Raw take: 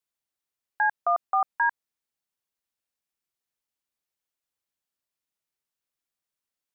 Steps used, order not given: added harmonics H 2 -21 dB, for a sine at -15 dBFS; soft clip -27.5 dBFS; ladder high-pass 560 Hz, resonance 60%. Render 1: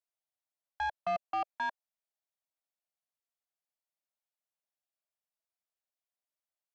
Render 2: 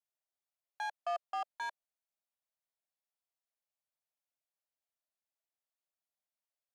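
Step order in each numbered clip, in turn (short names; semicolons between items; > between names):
added harmonics > ladder high-pass > soft clip; added harmonics > soft clip > ladder high-pass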